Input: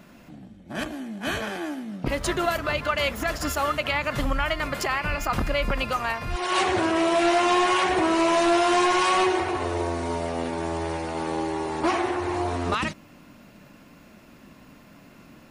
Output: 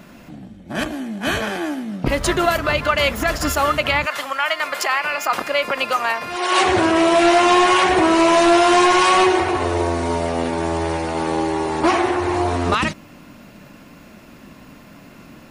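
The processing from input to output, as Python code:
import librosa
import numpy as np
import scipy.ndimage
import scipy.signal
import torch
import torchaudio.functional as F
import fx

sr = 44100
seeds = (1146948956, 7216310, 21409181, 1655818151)

y = fx.highpass(x, sr, hz=fx.line((4.05, 850.0), (6.63, 260.0)), slope=12, at=(4.05, 6.63), fade=0.02)
y = y * 10.0 ** (7.0 / 20.0)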